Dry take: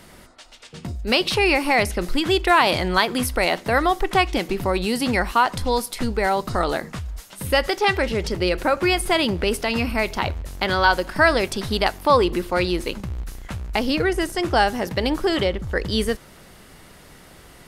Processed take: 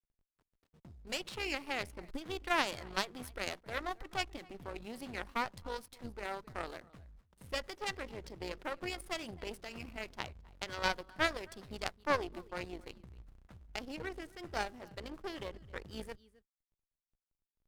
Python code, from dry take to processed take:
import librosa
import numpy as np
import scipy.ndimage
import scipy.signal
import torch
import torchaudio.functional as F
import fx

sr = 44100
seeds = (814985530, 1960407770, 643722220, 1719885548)

y = fx.backlash(x, sr, play_db=-30.0)
y = y + 10.0 ** (-19.5 / 20.0) * np.pad(y, (int(265 * sr / 1000.0), 0))[:len(y)]
y = fx.cheby_harmonics(y, sr, harmonics=(2, 3, 4, 8), levels_db=(-26, -10, -37, -36), full_scale_db=5.0)
y = y * 10.0 ** (2.0 / 20.0)